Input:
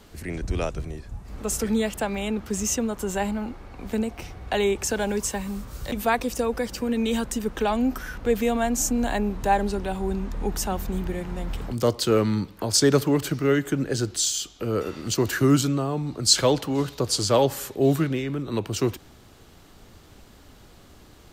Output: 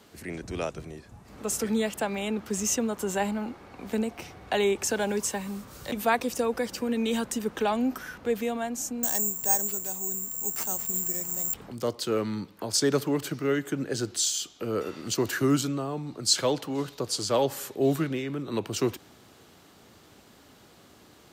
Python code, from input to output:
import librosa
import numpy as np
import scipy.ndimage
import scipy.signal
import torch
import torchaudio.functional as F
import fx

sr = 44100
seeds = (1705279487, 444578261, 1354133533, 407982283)

y = fx.resample_bad(x, sr, factor=6, down='none', up='zero_stuff', at=(9.03, 11.54))
y = scipy.signal.sosfilt(scipy.signal.bessel(2, 160.0, 'highpass', norm='mag', fs=sr, output='sos'), y)
y = fx.rider(y, sr, range_db=10, speed_s=2.0)
y = y * 10.0 ** (-7.0 / 20.0)